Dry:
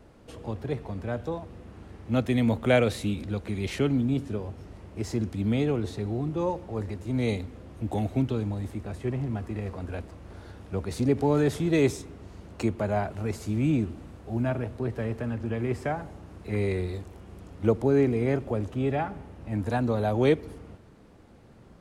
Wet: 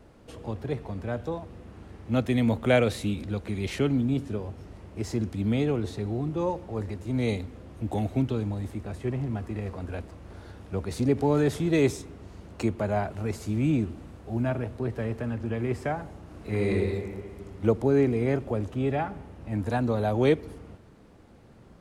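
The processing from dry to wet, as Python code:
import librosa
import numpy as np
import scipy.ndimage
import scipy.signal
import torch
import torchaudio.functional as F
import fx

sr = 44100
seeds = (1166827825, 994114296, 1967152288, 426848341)

y = fx.reverb_throw(x, sr, start_s=16.22, length_s=0.54, rt60_s=2.0, drr_db=0.0)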